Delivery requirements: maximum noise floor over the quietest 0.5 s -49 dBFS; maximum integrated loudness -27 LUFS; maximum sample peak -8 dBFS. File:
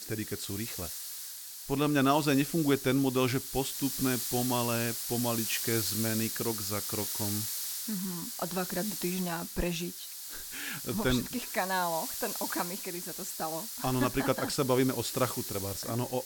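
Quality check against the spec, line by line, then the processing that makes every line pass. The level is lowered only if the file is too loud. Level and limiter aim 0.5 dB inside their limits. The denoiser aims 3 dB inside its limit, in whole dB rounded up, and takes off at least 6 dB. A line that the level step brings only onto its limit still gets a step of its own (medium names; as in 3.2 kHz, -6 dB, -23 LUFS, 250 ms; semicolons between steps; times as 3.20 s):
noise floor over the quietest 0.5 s -43 dBFS: fail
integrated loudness -31.0 LUFS: pass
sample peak -13.0 dBFS: pass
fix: noise reduction 9 dB, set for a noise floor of -43 dBFS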